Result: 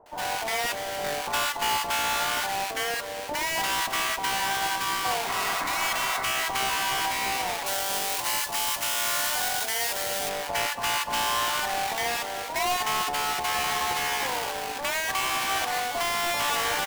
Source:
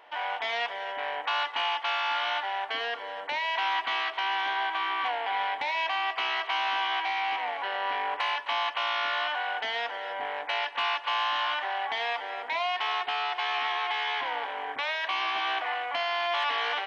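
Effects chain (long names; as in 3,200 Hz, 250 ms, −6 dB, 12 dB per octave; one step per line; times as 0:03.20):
each half-wave held at its own peak
0:05.25–0:06.15: healed spectral selection 470–2,200 Hz after
0:07.60–0:10.23: high-shelf EQ 4,200 Hz +11.5 dB
brickwall limiter −13 dBFS, peak gain reduction 6.5 dB
multiband delay without the direct sound lows, highs 60 ms, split 920 Hz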